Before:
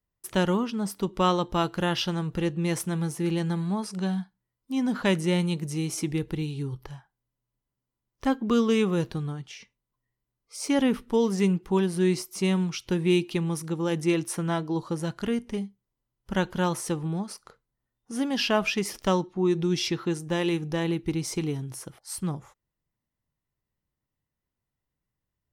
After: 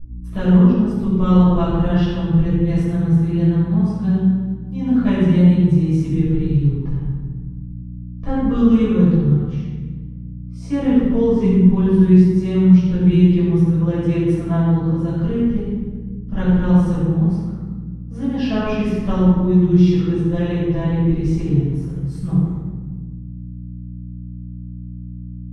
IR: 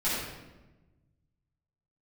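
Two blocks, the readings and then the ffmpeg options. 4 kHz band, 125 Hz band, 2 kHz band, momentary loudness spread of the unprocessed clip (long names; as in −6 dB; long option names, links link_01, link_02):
can't be measured, +15.0 dB, −1.5 dB, 10 LU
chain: -filter_complex "[0:a]aeval=exprs='val(0)+0.00708*(sin(2*PI*60*n/s)+sin(2*PI*2*60*n/s)/2+sin(2*PI*3*60*n/s)/3+sin(2*PI*4*60*n/s)/4+sin(2*PI*5*60*n/s)/5)':channel_layout=same,aemphasis=mode=reproduction:type=riaa[link_01];[1:a]atrim=start_sample=2205,asetrate=33516,aresample=44100[link_02];[link_01][link_02]afir=irnorm=-1:irlink=0,volume=-11dB"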